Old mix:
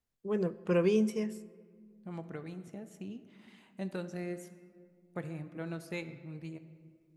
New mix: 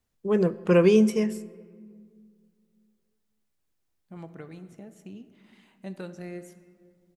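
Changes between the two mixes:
first voice +9.0 dB
second voice: entry +2.05 s

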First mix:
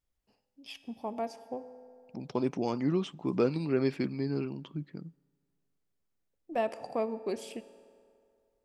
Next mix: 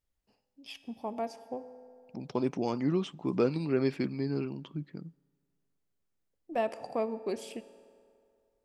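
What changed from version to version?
nothing changed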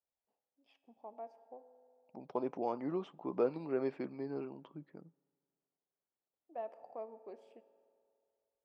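first voice −11.0 dB
master: add resonant band-pass 710 Hz, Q 1.3

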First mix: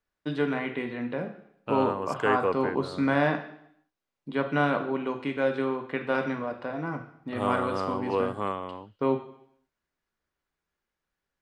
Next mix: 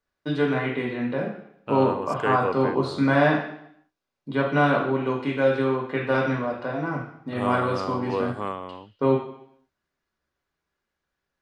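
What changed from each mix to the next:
first voice: send +8.5 dB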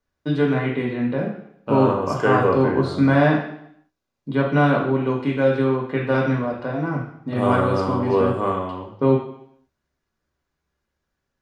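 second voice: send on
master: add low-shelf EQ 330 Hz +7.5 dB

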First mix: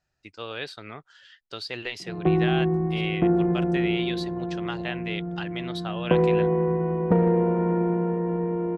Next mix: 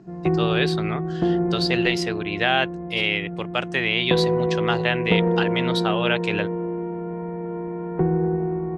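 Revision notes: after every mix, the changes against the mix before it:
speech +10.0 dB
background: entry −2.00 s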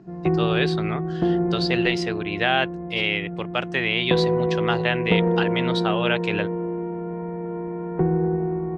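master: add high-frequency loss of the air 63 metres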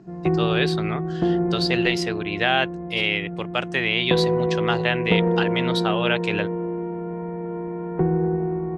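master: remove high-frequency loss of the air 63 metres

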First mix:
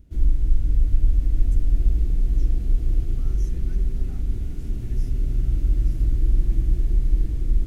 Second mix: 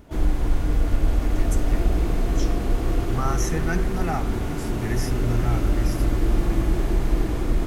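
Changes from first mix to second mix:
background −8.0 dB
master: remove guitar amp tone stack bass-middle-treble 10-0-1

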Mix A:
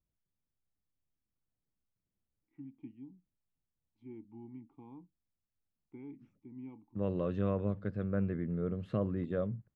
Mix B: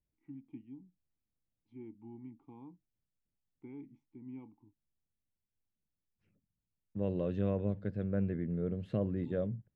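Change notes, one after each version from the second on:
first voice: entry −2.30 s
second voice: add parametric band 1,200 Hz −11.5 dB 0.47 octaves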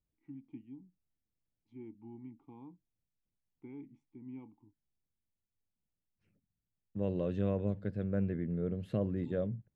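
master: remove high-frequency loss of the air 63 metres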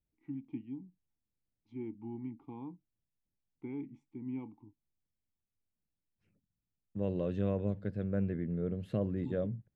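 first voice +7.0 dB

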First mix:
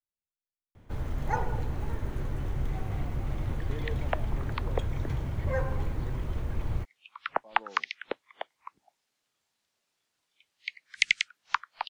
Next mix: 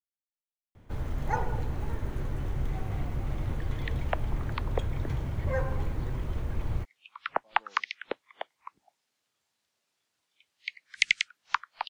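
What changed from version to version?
speech −10.0 dB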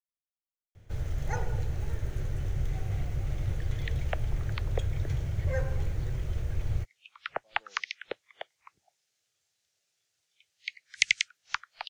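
master: add graphic EQ with 15 bands 100 Hz +4 dB, 250 Hz −12 dB, 1,000 Hz −11 dB, 6,300 Hz +6 dB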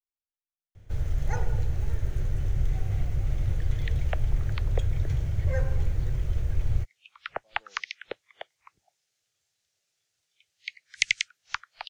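master: add low-shelf EQ 83 Hz +7 dB

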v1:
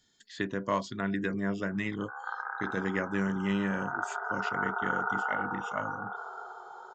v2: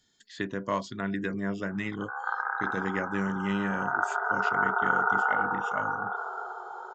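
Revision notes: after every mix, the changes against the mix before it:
background +6.0 dB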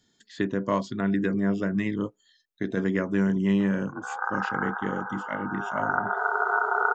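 background: entry +1.95 s
master: add parametric band 240 Hz +7.5 dB 2.8 octaves

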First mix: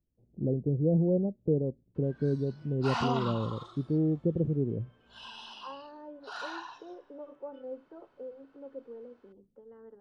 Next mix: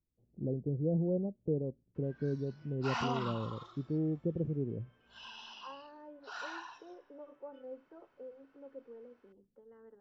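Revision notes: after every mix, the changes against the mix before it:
master: add Chebyshev low-pass with heavy ripple 7,600 Hz, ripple 6 dB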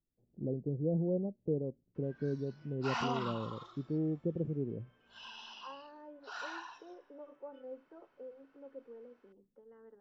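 master: add parametric band 75 Hz −8 dB 1.1 octaves

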